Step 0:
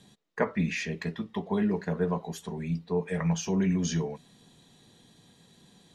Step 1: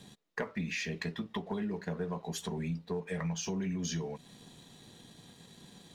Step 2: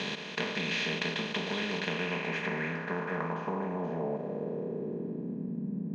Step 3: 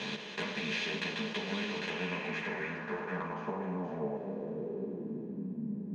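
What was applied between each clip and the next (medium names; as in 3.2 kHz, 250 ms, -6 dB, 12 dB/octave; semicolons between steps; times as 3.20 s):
dynamic bell 4.4 kHz, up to +5 dB, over -49 dBFS, Q 0.75; compression 6:1, threshold -38 dBFS, peak gain reduction 16.5 dB; waveshaping leveller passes 1; trim +1 dB
spectral levelling over time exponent 0.2; low-pass sweep 3.5 kHz -> 230 Hz, 1.76–5.64 s; high-pass 160 Hz 12 dB/octave; trim -4.5 dB
saturation -17.5 dBFS, distortion -30 dB; three-phase chorus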